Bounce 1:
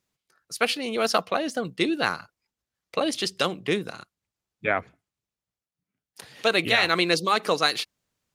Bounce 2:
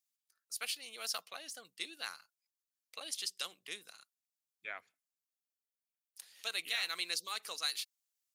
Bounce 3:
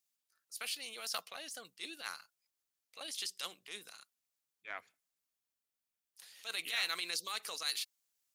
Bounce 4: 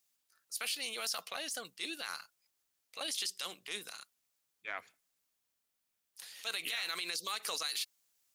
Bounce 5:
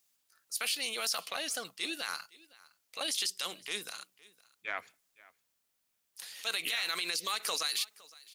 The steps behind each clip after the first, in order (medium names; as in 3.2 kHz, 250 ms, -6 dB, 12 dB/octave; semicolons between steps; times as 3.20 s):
differentiator; trim -5.5 dB
transient shaper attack -10 dB, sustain +2 dB; trim +2.5 dB
peak limiter -32 dBFS, peak gain reduction 11.5 dB; trim +6.5 dB
delay 512 ms -22.5 dB; trim +4 dB